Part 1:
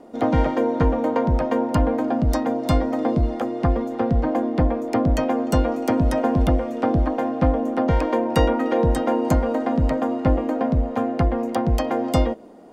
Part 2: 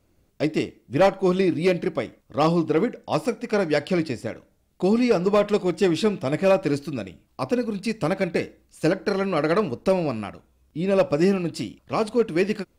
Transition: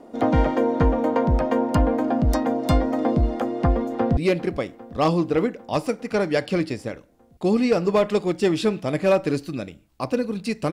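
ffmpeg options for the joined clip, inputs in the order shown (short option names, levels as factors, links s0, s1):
-filter_complex "[0:a]apad=whole_dur=10.72,atrim=end=10.72,atrim=end=4.172[s0];[1:a]atrim=start=1.558:end=8.11[s1];[s0][s1]acrossfade=d=0.004:c1=hsin:c2=hsin,asplit=2[s2][s3];[s3]afade=t=in:st=3.88:d=0.01,afade=t=out:st=4.17:d=0.01,aecho=0:1:400|800|1200|1600|2000|2400|2800|3200|3600|4000:0.141254|0.10594|0.0794552|0.0595914|0.0446936|0.0335202|0.0251401|0.0188551|0.0141413|0.010606[s4];[s2][s4]amix=inputs=2:normalize=0"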